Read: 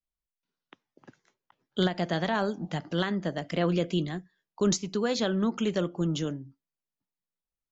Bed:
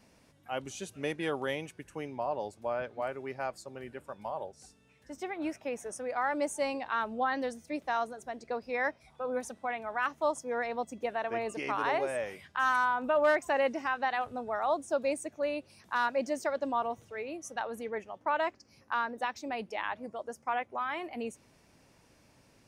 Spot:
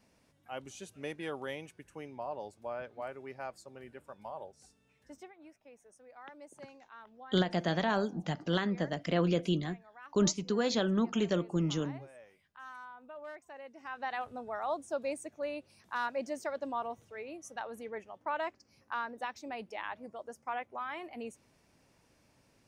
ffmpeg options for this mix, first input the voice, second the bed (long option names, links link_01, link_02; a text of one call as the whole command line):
ffmpeg -i stem1.wav -i stem2.wav -filter_complex "[0:a]adelay=5550,volume=-2.5dB[link_01];[1:a]volume=9.5dB,afade=type=out:start_time=5.1:duration=0.23:silence=0.188365,afade=type=in:start_time=13.73:duration=0.41:silence=0.16788[link_02];[link_01][link_02]amix=inputs=2:normalize=0" out.wav